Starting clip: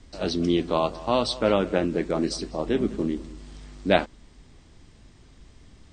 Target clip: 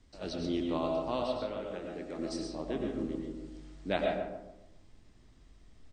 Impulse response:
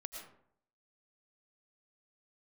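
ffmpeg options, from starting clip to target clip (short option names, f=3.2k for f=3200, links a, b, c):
-filter_complex "[0:a]asettb=1/sr,asplit=3[a][b][c];[a]atrim=end=1.224[d];[b]atrim=start=1.22:end=2.19,asetpts=PTS-STARTPTS,afade=t=in:d=0.004:c=qsin,afade=t=out:st=0.966:d=0.004:c=qsin,acrossover=split=310|3400[e][f][g];[e]acompressor=threshold=-38dB:ratio=4[h];[f]acompressor=threshold=-29dB:ratio=4[i];[g]acompressor=threshold=-46dB:ratio=4[j];[h][i][j]amix=inputs=3:normalize=0[k];[c]atrim=start=2.186[l];[d][k]acrossfade=d=0.004:c1=hsin:c2=qsin[m];[m][l]acrossfade=d=0.004:c1=qsin:c2=hsin,asplit=2[n][o];[o]adelay=142,lowpass=f=940:p=1,volume=-5dB,asplit=2[p][q];[q]adelay=142,lowpass=f=940:p=1,volume=0.43,asplit=2[r][s];[s]adelay=142,lowpass=f=940:p=1,volume=0.43,asplit=2[t][u];[u]adelay=142,lowpass=f=940:p=1,volume=0.43,asplit=2[v][w];[w]adelay=142,lowpass=f=940:p=1,volume=0.43[x];[n][p][r][t][v][x]amix=inputs=6:normalize=0[y];[1:a]atrim=start_sample=2205[z];[y][z]afir=irnorm=-1:irlink=0,volume=-7.5dB"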